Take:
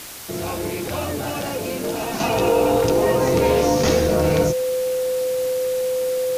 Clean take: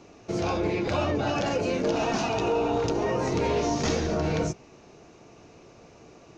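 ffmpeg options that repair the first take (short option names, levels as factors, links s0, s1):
-af "adeclick=t=4,bandreject=f=510:w=30,afwtdn=0.018,asetnsamples=n=441:p=0,asendcmd='2.2 volume volume -6.5dB',volume=1"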